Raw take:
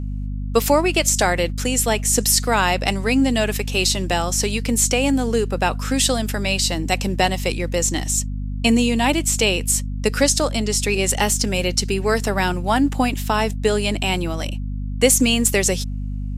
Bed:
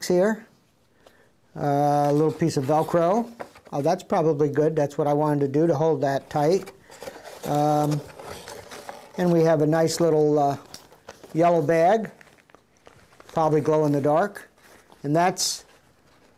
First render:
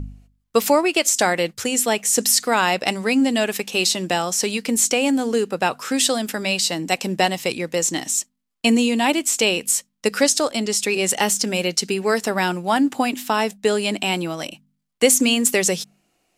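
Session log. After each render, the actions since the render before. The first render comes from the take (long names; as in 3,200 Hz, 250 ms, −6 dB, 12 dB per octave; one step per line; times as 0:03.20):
hum removal 50 Hz, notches 5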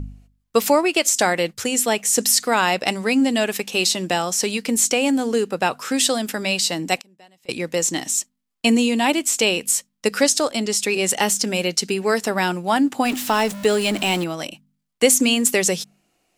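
0:07.00–0:07.49: gate with flip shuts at −21 dBFS, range −31 dB
0:13.05–0:14.24: converter with a step at zero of −27.5 dBFS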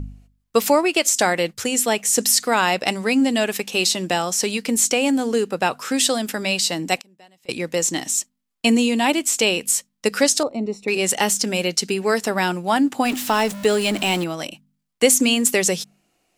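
0:10.43–0:10.88: moving average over 27 samples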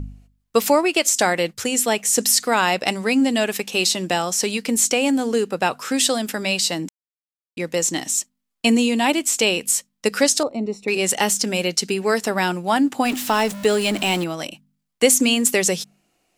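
0:06.89–0:07.57: silence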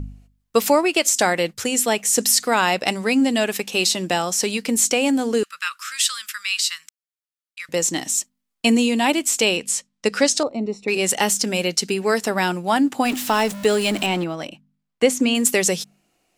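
0:05.43–0:07.69: elliptic high-pass filter 1,200 Hz
0:09.57–0:10.89: low-pass filter 8,000 Hz
0:14.06–0:15.35: low-pass filter 2,400 Hz 6 dB per octave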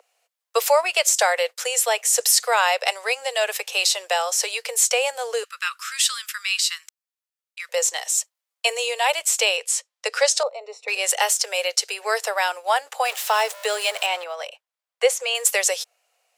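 Butterworth high-pass 470 Hz 72 dB per octave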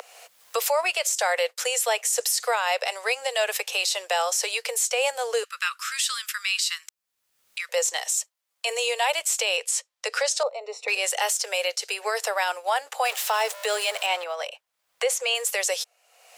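upward compression, threshold −27 dBFS
brickwall limiter −14.5 dBFS, peak gain reduction 10.5 dB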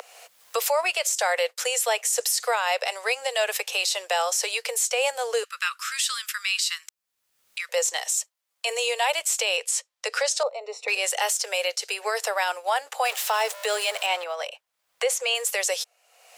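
no processing that can be heard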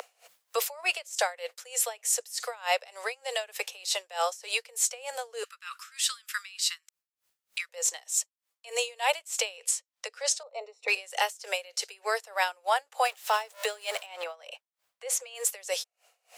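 tremolo with a sine in dB 3.3 Hz, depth 24 dB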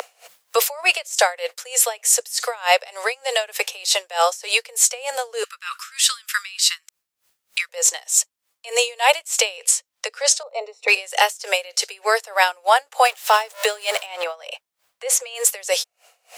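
level +10.5 dB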